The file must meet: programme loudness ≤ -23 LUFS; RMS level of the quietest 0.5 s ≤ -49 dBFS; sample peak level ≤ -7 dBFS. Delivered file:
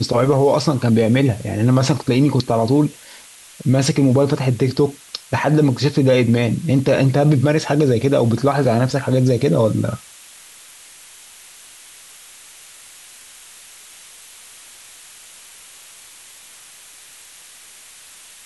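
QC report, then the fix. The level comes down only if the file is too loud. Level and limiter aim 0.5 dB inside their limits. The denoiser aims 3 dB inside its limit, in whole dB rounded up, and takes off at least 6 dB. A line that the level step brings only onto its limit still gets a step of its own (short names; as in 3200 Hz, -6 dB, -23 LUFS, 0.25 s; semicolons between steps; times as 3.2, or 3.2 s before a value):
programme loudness -17.0 LUFS: fail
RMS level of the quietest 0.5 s -43 dBFS: fail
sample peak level -5.5 dBFS: fail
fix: gain -6.5 dB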